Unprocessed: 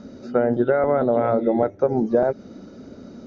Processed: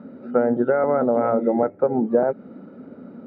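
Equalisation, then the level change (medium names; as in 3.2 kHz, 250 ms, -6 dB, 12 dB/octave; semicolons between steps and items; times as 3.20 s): cabinet simulation 130–2600 Hz, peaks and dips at 170 Hz +6 dB, 250 Hz +5 dB, 500 Hz +5 dB, 850 Hz +5 dB, 1.3 kHz +5 dB; -3.5 dB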